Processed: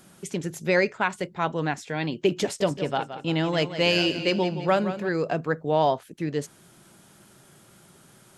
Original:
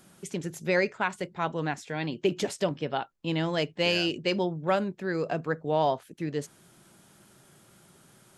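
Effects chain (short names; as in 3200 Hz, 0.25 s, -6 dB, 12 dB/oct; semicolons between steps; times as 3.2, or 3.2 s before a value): 2.43–5.09 warbling echo 0.171 s, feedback 44%, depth 51 cents, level -11 dB; gain +3.5 dB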